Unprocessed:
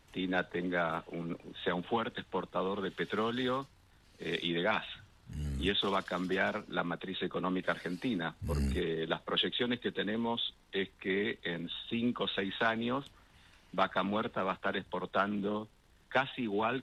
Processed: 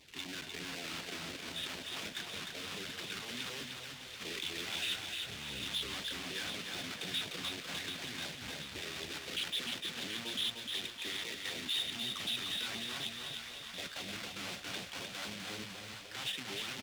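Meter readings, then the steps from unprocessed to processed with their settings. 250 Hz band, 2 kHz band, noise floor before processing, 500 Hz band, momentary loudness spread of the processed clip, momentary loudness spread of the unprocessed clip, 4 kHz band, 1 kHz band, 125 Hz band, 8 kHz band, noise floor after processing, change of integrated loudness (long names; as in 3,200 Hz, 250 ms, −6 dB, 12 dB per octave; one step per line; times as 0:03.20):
−13.0 dB, −4.5 dB, −64 dBFS, −15.0 dB, 7 LU, 7 LU, +2.5 dB, −13.0 dB, −11.0 dB, +16.0 dB, −49 dBFS, −4.0 dB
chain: each half-wave held at its own peak
reversed playback
downward compressor 6 to 1, threshold −35 dBFS, peak gain reduction 13.5 dB
reversed playback
wave folding −39 dBFS
echo with a time of its own for lows and highs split 700 Hz, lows 301 ms, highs 734 ms, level −8 dB
auto-filter notch saw down 4 Hz 320–1,600 Hz
meter weighting curve D
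on a send: repeating echo 303 ms, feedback 44%, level −4.5 dB
on the sum: level −2 dB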